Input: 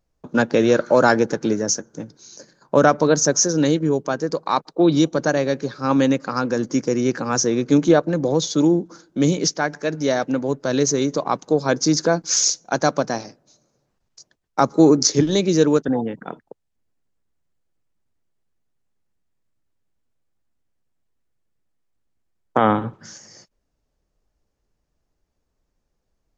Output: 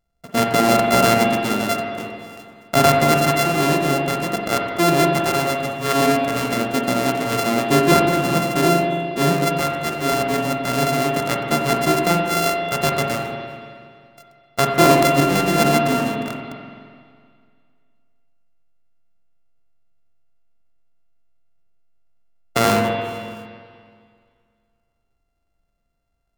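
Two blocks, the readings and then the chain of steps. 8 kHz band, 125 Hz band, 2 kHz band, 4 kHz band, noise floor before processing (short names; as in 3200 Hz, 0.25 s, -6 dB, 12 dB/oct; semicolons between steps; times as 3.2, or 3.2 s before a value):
n/a, +2.5 dB, +5.0 dB, +3.0 dB, -74 dBFS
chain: sample sorter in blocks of 64 samples; spring tank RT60 2.1 s, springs 42/47 ms, chirp 50 ms, DRR 1 dB; gain -1.5 dB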